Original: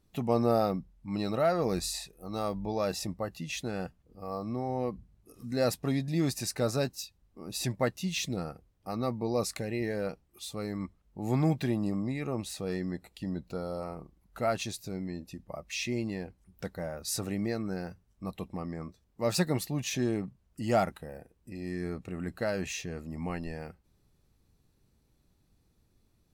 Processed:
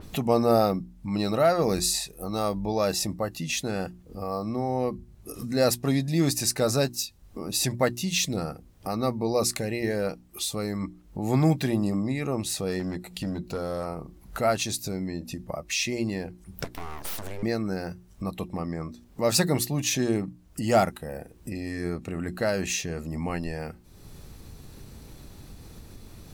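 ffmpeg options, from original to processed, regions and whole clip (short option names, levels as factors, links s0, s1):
-filter_complex "[0:a]asettb=1/sr,asplit=3[s0][s1][s2];[s0]atrim=end=12.794[s3];[s1]atrim=start=12.79:end=13.86,asetpts=PTS-STARTPTS,afade=t=in:d=0.004:c=qsin,afade=t=out:st=1.066:d=0.004:c=qsin,bandreject=f=59.47:t=h:w=4,bandreject=f=118.94:t=h:w=4,bandreject=f=178.41:t=h:w=4,bandreject=f=237.88:t=h:w=4,aeval=exprs='clip(val(0),-1,0.0251)':c=same[s4];[s2]atrim=start=13.856[s5];[s3][s4]acrossfade=d=0.004:c1=hsin:c2=qsin[s6];[s6][s5]acrossfade=d=0.004:c1=qsin:c2=hsin,asettb=1/sr,asplit=3[s7][s8][s9];[s7]atrim=end=16.644[s10];[s8]atrim=start=16.64:end=17.43,asetpts=PTS-STARTPTS,afade=t=in:d=0.004:c=qsin,afade=t=out:st=0.786:d=0.004:c=qsin,highpass=f=130:w=0.5412,highpass=f=130:w=1.3066,aeval=exprs='abs(val(0))':c=same,acompressor=threshold=0.0112:ratio=4:attack=3.2:release=140:knee=1:detection=peak[s11];[s9]atrim=start=17.426[s12];[s10][s11]acrossfade=d=0.004:c1=hsin:c2=qsin[s13];[s13][s12]acrossfade=d=0.004:c1=qsin:c2=hsin,bandreject=f=60:t=h:w=6,bandreject=f=120:t=h:w=6,bandreject=f=180:t=h:w=6,bandreject=f=240:t=h:w=6,bandreject=f=300:t=h:w=6,bandreject=f=360:t=h:w=6,acompressor=mode=upward:threshold=0.0224:ratio=2.5,adynamicequalizer=threshold=0.00282:dfrequency=4400:dqfactor=0.7:tfrequency=4400:tqfactor=0.7:attack=5:release=100:ratio=0.375:range=2.5:mode=boostabove:tftype=highshelf,volume=1.88"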